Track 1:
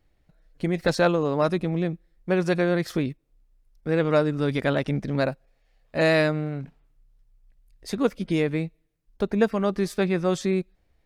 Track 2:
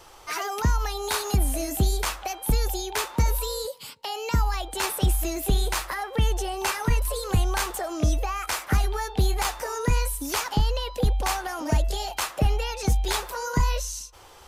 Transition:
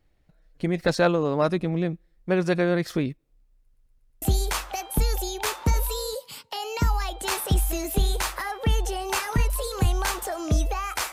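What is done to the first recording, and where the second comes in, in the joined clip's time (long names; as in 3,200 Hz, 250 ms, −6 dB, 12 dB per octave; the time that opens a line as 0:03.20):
track 1
0:03.62: stutter in place 0.12 s, 5 plays
0:04.22: continue with track 2 from 0:01.74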